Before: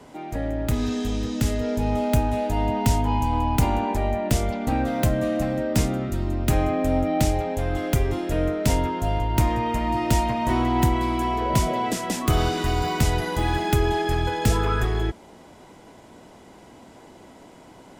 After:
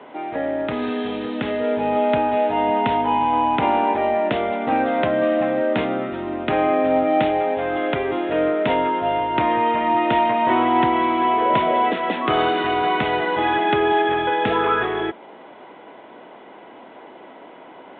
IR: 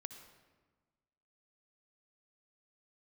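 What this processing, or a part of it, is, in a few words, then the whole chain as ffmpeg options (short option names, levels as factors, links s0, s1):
telephone: -af "highpass=370,lowpass=3000,volume=2.51" -ar 8000 -c:a pcm_mulaw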